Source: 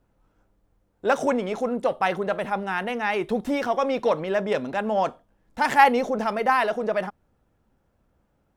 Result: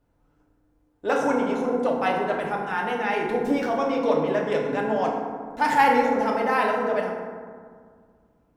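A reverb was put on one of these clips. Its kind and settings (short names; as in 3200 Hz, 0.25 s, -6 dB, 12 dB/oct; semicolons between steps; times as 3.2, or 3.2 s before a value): FDN reverb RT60 1.9 s, low-frequency decay 1.35×, high-frequency decay 0.4×, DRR -2 dB; gain -4 dB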